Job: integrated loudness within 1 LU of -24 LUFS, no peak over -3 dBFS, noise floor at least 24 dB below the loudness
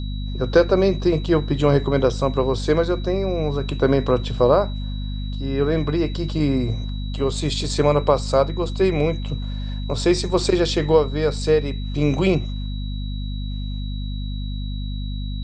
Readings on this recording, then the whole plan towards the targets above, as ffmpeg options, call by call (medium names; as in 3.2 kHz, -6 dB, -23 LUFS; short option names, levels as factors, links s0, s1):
hum 50 Hz; highest harmonic 250 Hz; hum level -24 dBFS; steady tone 3.9 kHz; tone level -40 dBFS; loudness -21.5 LUFS; peak level -3.0 dBFS; loudness target -24.0 LUFS
-> -af "bandreject=f=50:t=h:w=4,bandreject=f=100:t=h:w=4,bandreject=f=150:t=h:w=4,bandreject=f=200:t=h:w=4,bandreject=f=250:t=h:w=4"
-af "bandreject=f=3900:w=30"
-af "volume=0.75"